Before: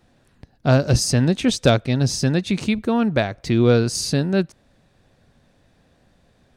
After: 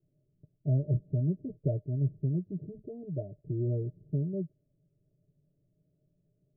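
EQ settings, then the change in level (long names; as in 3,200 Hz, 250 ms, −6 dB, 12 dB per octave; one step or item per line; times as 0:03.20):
Chebyshev low-pass with heavy ripple 630 Hz, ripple 9 dB
phaser with its sweep stopped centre 330 Hz, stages 8
−6.5 dB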